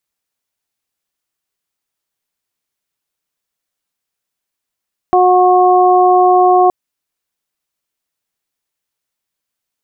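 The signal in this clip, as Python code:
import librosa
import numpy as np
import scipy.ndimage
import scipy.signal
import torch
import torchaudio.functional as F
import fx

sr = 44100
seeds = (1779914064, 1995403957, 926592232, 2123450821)

y = fx.additive_steady(sr, length_s=1.57, hz=364.0, level_db=-11.0, upper_db=(3, -5))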